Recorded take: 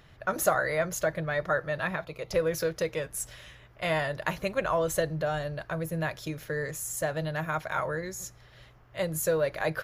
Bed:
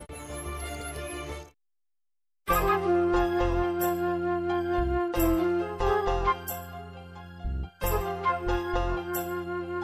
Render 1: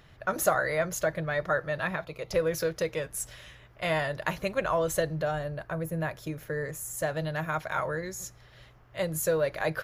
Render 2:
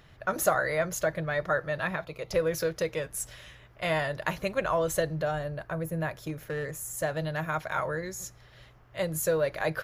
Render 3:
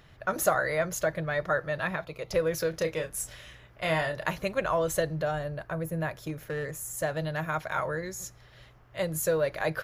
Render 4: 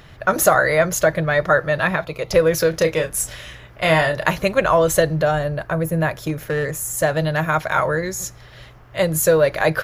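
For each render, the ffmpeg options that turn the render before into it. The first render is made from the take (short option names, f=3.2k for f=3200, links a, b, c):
-filter_complex "[0:a]asettb=1/sr,asplit=3[a][b][c];[a]atrim=end=5.314[d];[b]atrim=start=5.31:end=6.99,asetpts=PTS-STARTPTS,afade=t=in:d=0.004:c=qsin,afade=t=out:st=1.676:d=0.004:c=qsin,equalizer=f=4.3k:t=o:w=1.8:g=-7[e];[c]atrim=start=6.986[f];[d][e]acrossfade=d=0.004:c1=hsin:c2=qsin[g];[g][f]acrossfade=d=0.004:c1=qsin:c2=hsin"
-filter_complex "[0:a]asettb=1/sr,asplit=3[a][b][c];[a]atrim=end=6.104[d];[b]atrim=start=6.1:end=6.92,asetpts=PTS-STARTPTS,afade=t=in:d=0.004:c=qsin,afade=t=out:st=0.816:d=0.004:c=qsin,asoftclip=type=hard:threshold=-27.5dB[e];[c]atrim=start=6.916[f];[d][e]acrossfade=d=0.004:c1=hsin:c2=qsin[g];[g][f]acrossfade=d=0.004:c1=qsin:c2=hsin"
-filter_complex "[0:a]asettb=1/sr,asplit=3[a][b][c];[a]atrim=end=2.704[d];[b]atrim=start=2.7:end=4.26,asetpts=PTS-STARTPTS,afade=t=in:d=0.004:c=qsin,afade=t=out:st=1.556:d=0.004:c=qsin,asplit=2[e][f];[f]adelay=31,volume=-8dB[g];[e][g]amix=inputs=2:normalize=0,atrim=end_sample=68796[h];[c]atrim=start=4.256[i];[d][h]acrossfade=d=0.004:c1=hsin:c2=qsin[j];[j][i]acrossfade=d=0.004:c1=qsin:c2=hsin"
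-af "volume=11.5dB,alimiter=limit=-1dB:level=0:latency=1"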